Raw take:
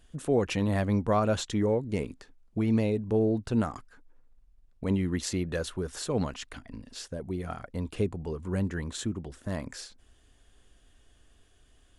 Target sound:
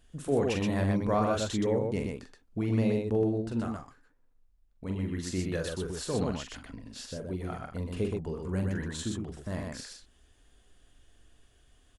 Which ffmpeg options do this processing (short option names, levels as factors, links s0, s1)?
-filter_complex "[0:a]asplit=3[s0][s1][s2];[s0]afade=t=out:st=3.28:d=0.02[s3];[s1]flanger=delay=7.7:depth=7.5:regen=-69:speed=1.2:shape=triangular,afade=t=in:st=3.28:d=0.02,afade=t=out:st=5.32:d=0.02[s4];[s2]afade=t=in:st=5.32:d=0.02[s5];[s3][s4][s5]amix=inputs=3:normalize=0,aecho=1:1:43|124:0.501|0.668,volume=0.708"